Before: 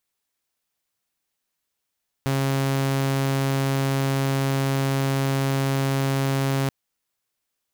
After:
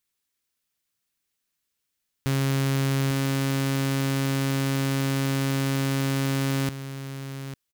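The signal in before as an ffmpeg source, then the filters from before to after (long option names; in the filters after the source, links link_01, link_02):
-f lavfi -i "aevalsrc='0.126*(2*mod(136*t,1)-1)':duration=4.43:sample_rate=44100"
-filter_complex "[0:a]equalizer=frequency=730:width=1.1:gain=-8,asplit=2[link_01][link_02];[link_02]aecho=0:1:849:0.266[link_03];[link_01][link_03]amix=inputs=2:normalize=0"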